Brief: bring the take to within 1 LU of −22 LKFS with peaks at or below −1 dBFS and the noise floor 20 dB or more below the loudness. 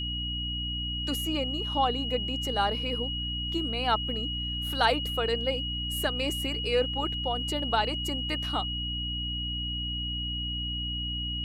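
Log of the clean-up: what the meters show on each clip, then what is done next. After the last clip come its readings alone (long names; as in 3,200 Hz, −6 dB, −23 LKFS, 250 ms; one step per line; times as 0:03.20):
mains hum 60 Hz; hum harmonics up to 300 Hz; level of the hum −33 dBFS; interfering tone 2,900 Hz; level of the tone −32 dBFS; integrated loudness −29.0 LKFS; sample peak −11.0 dBFS; target loudness −22.0 LKFS
→ hum removal 60 Hz, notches 5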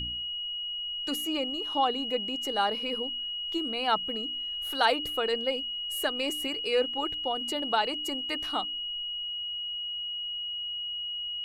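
mains hum none found; interfering tone 2,900 Hz; level of the tone −32 dBFS
→ notch filter 2,900 Hz, Q 30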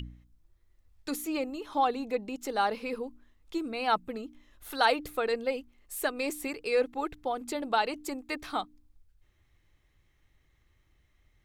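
interfering tone none found; integrated loudness −32.0 LKFS; sample peak −12.0 dBFS; target loudness −22.0 LKFS
→ level +10 dB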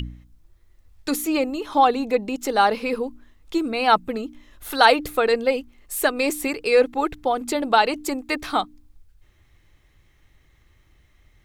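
integrated loudness −22.0 LKFS; sample peak −2.0 dBFS; background noise floor −59 dBFS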